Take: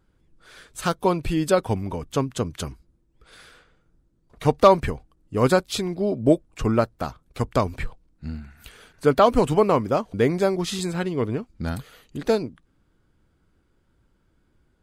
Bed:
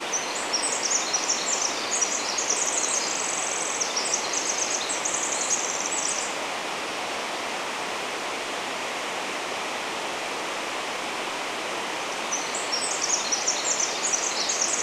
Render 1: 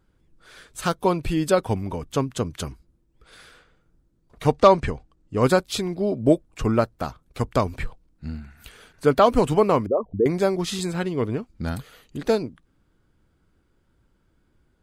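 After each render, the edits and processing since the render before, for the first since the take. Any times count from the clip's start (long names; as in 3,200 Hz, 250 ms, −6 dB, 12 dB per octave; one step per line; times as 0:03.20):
0:04.55–0:05.43: low-pass filter 8,500 Hz 24 dB per octave
0:09.86–0:10.26: spectral envelope exaggerated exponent 3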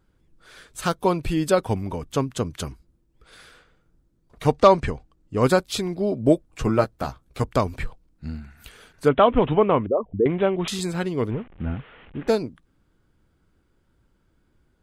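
0:06.47–0:07.44: double-tracking delay 15 ms −7 dB
0:09.08–0:10.68: bad sample-rate conversion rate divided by 6×, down none, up filtered
0:11.30–0:12.28: linear delta modulator 16 kbit/s, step −42 dBFS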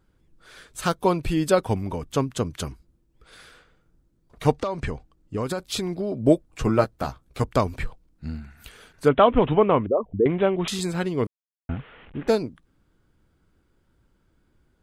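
0:04.56–0:06.19: downward compressor 20 to 1, threshold −22 dBFS
0:11.27–0:11.69: silence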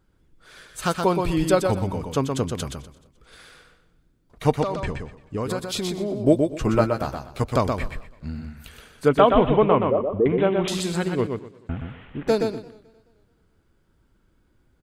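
repeating echo 123 ms, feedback 21%, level −5 dB
feedback echo with a swinging delay time 216 ms, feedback 42%, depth 124 cents, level −24 dB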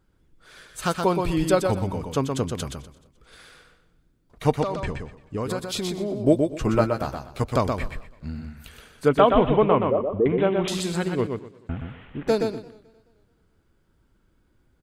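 level −1 dB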